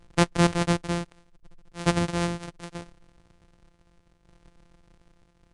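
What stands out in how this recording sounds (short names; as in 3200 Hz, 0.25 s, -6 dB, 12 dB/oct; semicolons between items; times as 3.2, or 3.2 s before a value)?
a buzz of ramps at a fixed pitch in blocks of 256 samples; tremolo saw down 0.7 Hz, depth 60%; Vorbis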